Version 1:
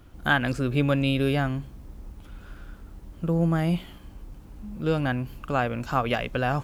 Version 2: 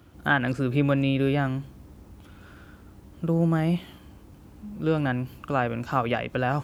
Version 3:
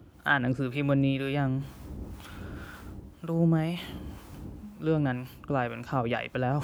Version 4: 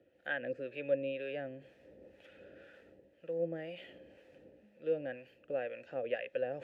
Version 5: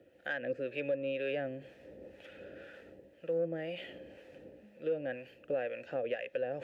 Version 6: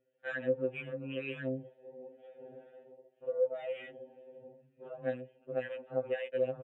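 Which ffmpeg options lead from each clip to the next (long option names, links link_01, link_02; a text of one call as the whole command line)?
ffmpeg -i in.wav -filter_complex "[0:a]highpass=frequency=64:width=0.5412,highpass=frequency=64:width=1.3066,acrossover=split=3100[link_01][link_02];[link_02]acompressor=threshold=-47dB:ratio=4:attack=1:release=60[link_03];[link_01][link_03]amix=inputs=2:normalize=0,equalizer=frequency=320:width=4.1:gain=2.5" out.wav
ffmpeg -i in.wav -filter_complex "[0:a]areverse,acompressor=mode=upward:threshold=-27dB:ratio=2.5,areverse,acrossover=split=710[link_01][link_02];[link_01]aeval=exprs='val(0)*(1-0.7/2+0.7/2*cos(2*PI*2*n/s))':channel_layout=same[link_03];[link_02]aeval=exprs='val(0)*(1-0.7/2-0.7/2*cos(2*PI*2*n/s))':channel_layout=same[link_04];[link_03][link_04]amix=inputs=2:normalize=0" out.wav
ffmpeg -i in.wav -filter_complex "[0:a]asplit=3[link_01][link_02][link_03];[link_01]bandpass=frequency=530:width_type=q:width=8,volume=0dB[link_04];[link_02]bandpass=frequency=1840:width_type=q:width=8,volume=-6dB[link_05];[link_03]bandpass=frequency=2480:width_type=q:width=8,volume=-9dB[link_06];[link_04][link_05][link_06]amix=inputs=3:normalize=0,volume=2dB" out.wav
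ffmpeg -i in.wav -filter_complex "[0:a]asplit=2[link_01][link_02];[link_02]asoftclip=type=tanh:threshold=-31dB,volume=-9.5dB[link_03];[link_01][link_03]amix=inputs=2:normalize=0,alimiter=level_in=5dB:limit=-24dB:level=0:latency=1:release=350,volume=-5dB,volume=3.5dB" out.wav
ffmpeg -i in.wav -af "aresample=8000,aresample=44100,afwtdn=0.00562,afftfilt=real='re*2.45*eq(mod(b,6),0)':imag='im*2.45*eq(mod(b,6),0)':win_size=2048:overlap=0.75,volume=2dB" out.wav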